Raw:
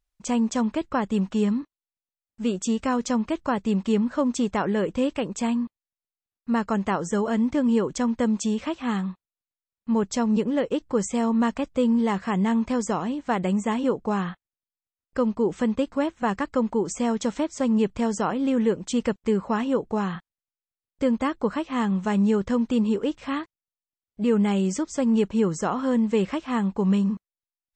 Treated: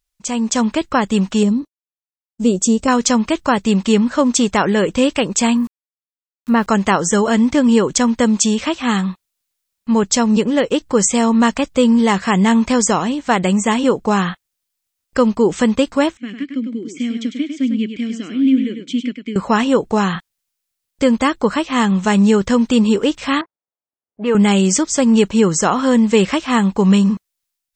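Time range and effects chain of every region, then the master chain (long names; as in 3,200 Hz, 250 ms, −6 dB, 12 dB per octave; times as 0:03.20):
0:01.43–0:02.88: downward expander −43 dBFS + drawn EQ curve 560 Hz 0 dB, 1,700 Hz −16 dB, 7,200 Hz −4 dB
0:05.57–0:06.67: high-frequency loss of the air 250 metres + centre clipping without the shift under −51.5 dBFS
0:16.17–0:19.36: formant filter i + single-tap delay 101 ms −7 dB
0:23.41–0:24.35: resonant band-pass 970 Hz, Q 0.64 + low-pass that shuts in the quiet parts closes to 640 Hz, open at −24.5 dBFS
whole clip: high-shelf EQ 2,100 Hz +10 dB; automatic gain control gain up to 11.5 dB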